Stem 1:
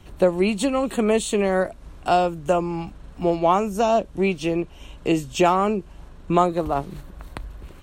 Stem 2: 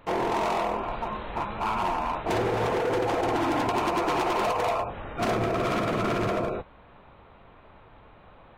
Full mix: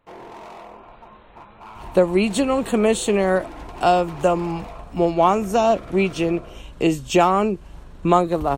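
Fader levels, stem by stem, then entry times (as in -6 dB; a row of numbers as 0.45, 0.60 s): +2.0, -13.0 dB; 1.75, 0.00 s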